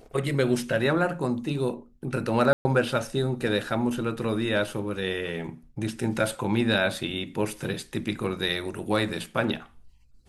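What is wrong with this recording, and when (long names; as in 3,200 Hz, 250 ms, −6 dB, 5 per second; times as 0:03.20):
0:02.53–0:02.65: drop-out 120 ms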